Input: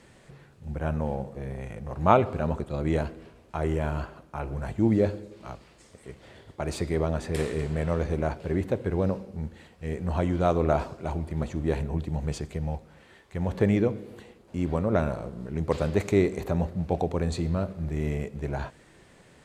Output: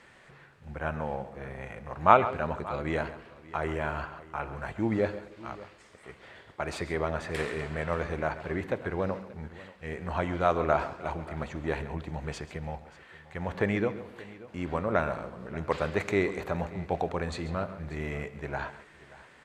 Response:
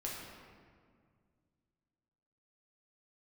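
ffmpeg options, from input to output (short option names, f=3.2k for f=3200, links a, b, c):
-filter_complex "[0:a]equalizer=f=1.6k:w=0.44:g=13.5,asplit=2[a][b];[b]aecho=0:1:136|583:0.178|0.112[c];[a][c]amix=inputs=2:normalize=0,volume=-8.5dB"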